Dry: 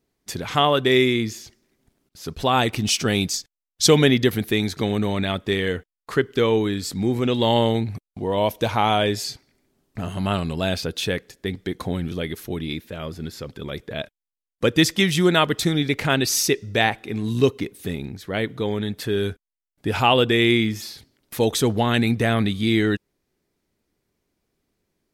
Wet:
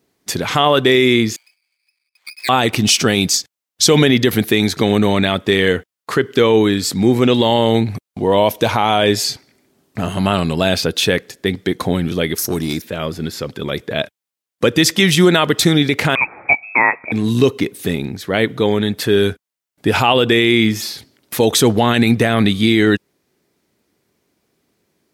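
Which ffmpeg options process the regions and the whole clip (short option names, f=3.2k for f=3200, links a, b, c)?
-filter_complex "[0:a]asettb=1/sr,asplit=3[a][b][c];[a]atrim=end=1.364[d];[b]atrim=start=1.36:end=2.49,asetpts=PTS-STARTPTS,afade=t=in:d=0.004:c=qsin,afade=t=out:st=1.126:d=0.004:c=qsin,lowpass=f=2.2k:t=q:w=0.5098,lowpass=f=2.2k:t=q:w=0.6013,lowpass=f=2.2k:t=q:w=0.9,lowpass=f=2.2k:t=q:w=2.563,afreqshift=-2600,aeval=exprs='max(val(0),0)':c=same,aderivative[e];[c]atrim=start=2.486[f];[d][e]acrossfade=d=0.004:c1=hsin:c2=qsin[g];[g][f]acrossfade=d=0.004:c1=qsin:c2=hsin,asettb=1/sr,asplit=3[h][i][j];[h]atrim=end=12.384[k];[i]atrim=start=12.38:end=12.82,asetpts=PTS-STARTPTS,afade=t=in:d=0.004:c=qsin,afade=t=out:st=0.436:d=0.004:c=qsin,highshelf=f=4.2k:t=q:w=3:g=9.5,volume=22.5dB,asoftclip=hard,volume=-22.5dB[l];[j]atrim=start=12.816[m];[k][l]acrossfade=d=0.004:c1=hsin:c2=qsin[n];[n][m]acrossfade=d=0.004:c1=qsin:c2=hsin,asettb=1/sr,asplit=3[o][p][q];[o]atrim=end=16.154[r];[p]atrim=start=16.15:end=17.12,asetpts=PTS-STARTPTS,afade=t=in:d=0.004:c=qsin,afade=t=out:st=0.966:d=0.004:c=qsin,highpass=f=400:p=1,lowpass=f=2.3k:t=q:w=0.5098,lowpass=f=2.3k:t=q:w=0.6013,lowpass=f=2.3k:t=q:w=0.9,lowpass=f=2.3k:t=q:w=2.563,afreqshift=-2700[s];[q]atrim=start=17.116[t];[r][s]acrossfade=d=0.004:c1=hsin:c2=qsin[u];[u][t]acrossfade=d=0.004:c1=qsin:c2=hsin,highpass=81,lowshelf=f=130:g=-5,alimiter=level_in=11dB:limit=-1dB:release=50:level=0:latency=1,volume=-1dB"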